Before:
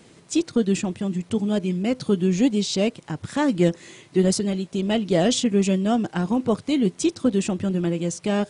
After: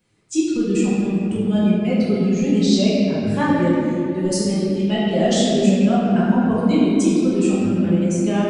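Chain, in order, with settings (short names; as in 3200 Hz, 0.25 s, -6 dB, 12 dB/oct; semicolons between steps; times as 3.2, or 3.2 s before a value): per-bin expansion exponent 1.5; limiter -17 dBFS, peak gain reduction 8 dB; shoebox room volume 120 m³, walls hard, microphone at 0.99 m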